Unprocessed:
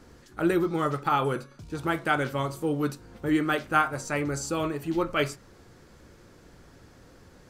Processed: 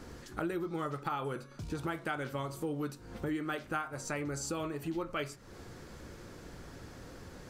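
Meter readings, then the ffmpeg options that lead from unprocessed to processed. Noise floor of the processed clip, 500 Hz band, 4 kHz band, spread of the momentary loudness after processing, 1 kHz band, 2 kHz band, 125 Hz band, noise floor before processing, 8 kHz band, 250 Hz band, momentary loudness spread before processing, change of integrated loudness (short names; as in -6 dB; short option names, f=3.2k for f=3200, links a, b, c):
-52 dBFS, -9.5 dB, -9.0 dB, 14 LU, -11.0 dB, -10.5 dB, -7.5 dB, -54 dBFS, -5.0 dB, -9.5 dB, 8 LU, -10.0 dB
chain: -af "acompressor=threshold=-40dB:ratio=4,volume=4dB"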